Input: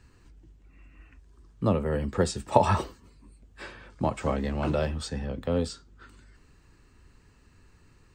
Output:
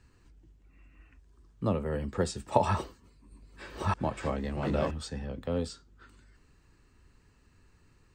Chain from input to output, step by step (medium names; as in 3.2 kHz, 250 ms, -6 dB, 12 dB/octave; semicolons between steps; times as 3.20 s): 2.68–4.91 s: chunks repeated in reverse 630 ms, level 0 dB; trim -4.5 dB